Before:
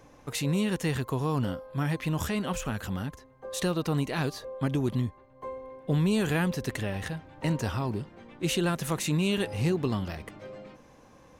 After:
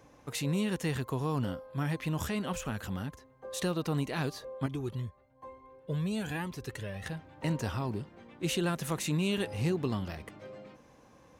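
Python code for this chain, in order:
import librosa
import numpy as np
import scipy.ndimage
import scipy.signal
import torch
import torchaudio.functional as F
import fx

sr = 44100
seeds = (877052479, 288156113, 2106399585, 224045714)

y = scipy.signal.sosfilt(scipy.signal.butter(2, 41.0, 'highpass', fs=sr, output='sos'), x)
y = fx.comb_cascade(y, sr, direction='rising', hz=1.1, at=(4.66, 7.06))
y = y * librosa.db_to_amplitude(-3.5)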